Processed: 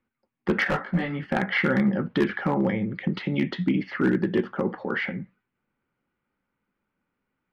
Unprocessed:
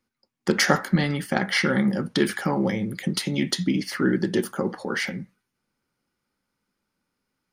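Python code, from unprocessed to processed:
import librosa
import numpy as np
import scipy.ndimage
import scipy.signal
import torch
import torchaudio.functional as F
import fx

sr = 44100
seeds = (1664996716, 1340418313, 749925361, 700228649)

y = scipy.signal.sosfilt(scipy.signal.butter(4, 2800.0, 'lowpass', fs=sr, output='sos'), x)
y = np.clip(10.0 ** (14.0 / 20.0) * y, -1.0, 1.0) / 10.0 ** (14.0 / 20.0)
y = fx.detune_double(y, sr, cents=18, at=(0.64, 1.23))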